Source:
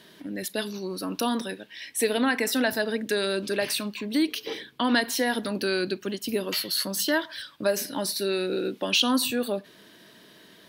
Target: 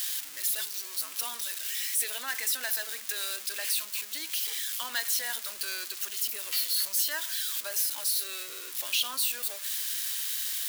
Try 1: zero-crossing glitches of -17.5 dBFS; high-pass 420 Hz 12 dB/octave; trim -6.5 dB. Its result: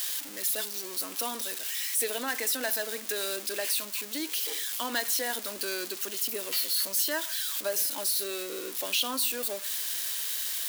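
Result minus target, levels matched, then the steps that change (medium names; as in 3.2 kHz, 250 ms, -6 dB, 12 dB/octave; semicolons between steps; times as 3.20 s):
500 Hz band +12.5 dB
change: high-pass 1.2 kHz 12 dB/octave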